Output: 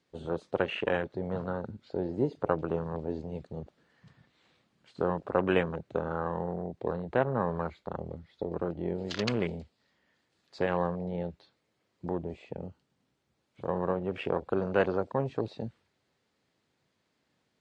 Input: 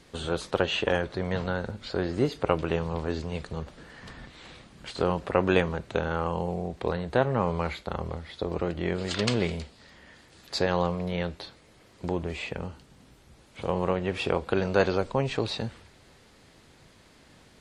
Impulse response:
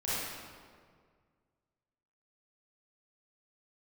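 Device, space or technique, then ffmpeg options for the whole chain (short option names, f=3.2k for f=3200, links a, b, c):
over-cleaned archive recording: -af "highpass=110,lowpass=7.8k,afwtdn=0.0251,volume=-3dB"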